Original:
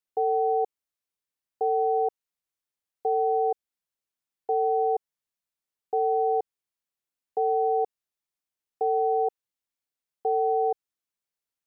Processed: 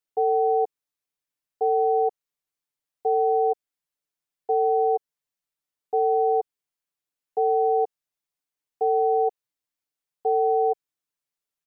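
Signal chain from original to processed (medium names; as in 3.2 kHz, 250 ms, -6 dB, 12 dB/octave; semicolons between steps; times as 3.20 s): comb 6.8 ms; trim -1 dB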